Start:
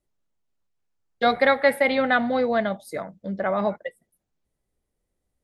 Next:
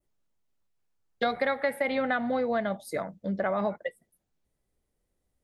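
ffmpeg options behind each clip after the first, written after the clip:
ffmpeg -i in.wav -af "adynamicequalizer=threshold=0.00794:dfrequency=4400:dqfactor=1.1:tfrequency=4400:tqfactor=1.1:attack=5:release=100:ratio=0.375:range=2.5:mode=cutabove:tftype=bell,acompressor=threshold=-25dB:ratio=4" out.wav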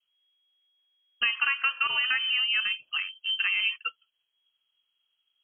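ffmpeg -i in.wav -af "lowpass=frequency=2800:width_type=q:width=0.5098,lowpass=frequency=2800:width_type=q:width=0.6013,lowpass=frequency=2800:width_type=q:width=0.9,lowpass=frequency=2800:width_type=q:width=2.563,afreqshift=-3300,volume=1dB" out.wav

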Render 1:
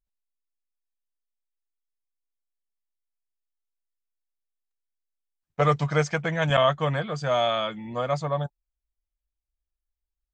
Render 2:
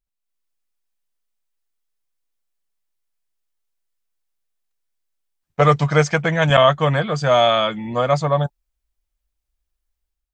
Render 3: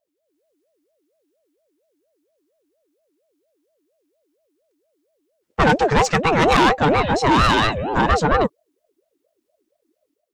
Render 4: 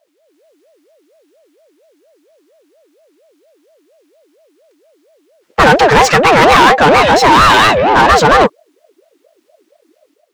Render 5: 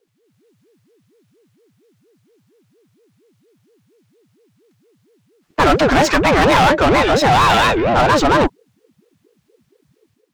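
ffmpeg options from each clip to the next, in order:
ffmpeg -i in.wav -af "dynaudnorm=framelen=110:gausssize=5:maxgain=9dB" out.wav
ffmpeg -i in.wav -af "asoftclip=type=tanh:threshold=-15.5dB,aeval=exprs='val(0)*sin(2*PI*470*n/s+470*0.4/4.3*sin(2*PI*4.3*n/s))':channel_layout=same,volume=7.5dB" out.wav
ffmpeg -i in.wav -filter_complex "[0:a]asplit=2[link_01][link_02];[link_02]highpass=frequency=720:poles=1,volume=21dB,asoftclip=type=tanh:threshold=-8dB[link_03];[link_01][link_03]amix=inputs=2:normalize=0,lowpass=frequency=3800:poles=1,volume=-6dB,volume=6.5dB" out.wav
ffmpeg -i in.wav -af "afreqshift=-180,volume=-5.5dB" out.wav

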